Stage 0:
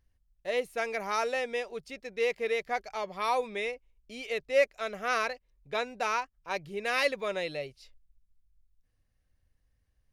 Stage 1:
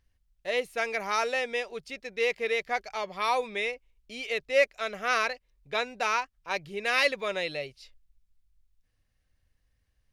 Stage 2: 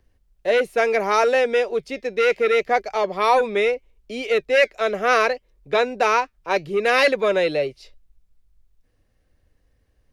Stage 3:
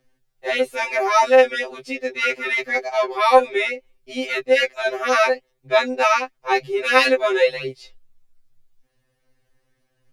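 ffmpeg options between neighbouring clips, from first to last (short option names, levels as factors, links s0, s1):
-af "equalizer=f=3100:t=o:w=2.6:g=5"
-filter_complex "[0:a]acrossover=split=360|440|1700[s0][s1][s2][s3];[s1]aeval=exprs='0.0398*sin(PI/2*3.55*val(0)/0.0398)':c=same[s4];[s3]flanger=delay=3.1:depth=4.2:regen=-74:speed=0.7:shape=sinusoidal[s5];[s0][s4][s2][s5]amix=inputs=4:normalize=0,volume=2.66"
-af "lowshelf=f=420:g=-5,afftfilt=real='re*2.45*eq(mod(b,6),0)':imag='im*2.45*eq(mod(b,6),0)':win_size=2048:overlap=0.75,volume=1.78"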